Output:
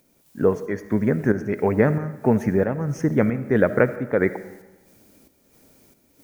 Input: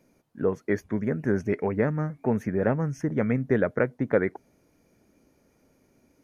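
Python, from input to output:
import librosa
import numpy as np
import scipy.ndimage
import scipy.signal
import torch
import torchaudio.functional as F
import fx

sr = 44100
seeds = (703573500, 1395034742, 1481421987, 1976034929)

y = fx.dmg_noise_colour(x, sr, seeds[0], colour='blue', level_db=-65.0)
y = fx.volume_shaper(y, sr, bpm=91, per_beat=1, depth_db=-9, release_ms=256.0, shape='slow start')
y = fx.rev_freeverb(y, sr, rt60_s=1.1, hf_ratio=0.8, predelay_ms=25, drr_db=13.0)
y = y * librosa.db_to_amplitude(6.5)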